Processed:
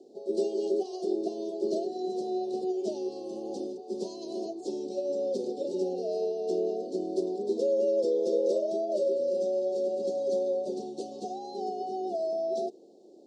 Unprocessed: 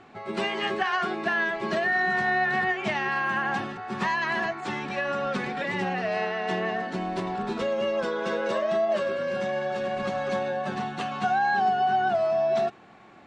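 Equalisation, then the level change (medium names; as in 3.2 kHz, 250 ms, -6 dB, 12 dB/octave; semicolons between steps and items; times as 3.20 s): ladder high-pass 300 Hz, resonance 45%; elliptic band-stop 540–4800 Hz, stop band 60 dB; +8.5 dB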